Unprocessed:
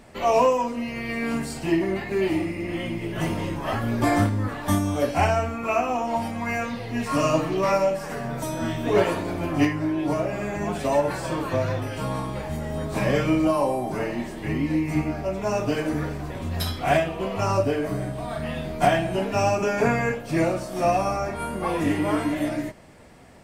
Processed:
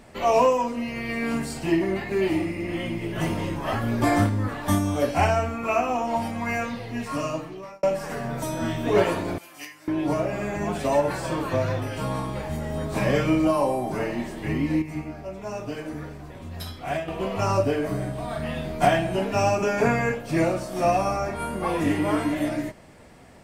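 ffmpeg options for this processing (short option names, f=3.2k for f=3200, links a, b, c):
-filter_complex "[0:a]asettb=1/sr,asplit=3[a][b][c];[a]atrim=end=9.384[d];[b]atrim=start=9.38:end=9.88,asetpts=PTS-STARTPTS,afade=t=in:d=0.004:c=qsin,afade=t=out:st=0.496:d=0.004:c=qsin,aderivative[e];[c]atrim=start=9.876[f];[d][e]acrossfade=d=0.004:c1=hsin:c2=qsin[g];[g][f]acrossfade=d=0.004:c1=qsin:c2=hsin,asplit=4[h][i][j][k];[h]atrim=end=7.83,asetpts=PTS-STARTPTS,afade=t=out:st=6.59:d=1.24[l];[i]atrim=start=7.83:end=14.822,asetpts=PTS-STARTPTS,afade=t=in:d=0.004:c=hsin[m];[j]atrim=start=14.818:end=17.082,asetpts=PTS-STARTPTS,volume=-8dB[n];[k]atrim=start=17.078[o];[l][m]concat=n=2:v=0:a=1[p];[p][n]acrossfade=d=0.004:c1=hsin:c2=hsin[q];[q][o]acrossfade=d=0.004:c1=hsin:c2=hsin"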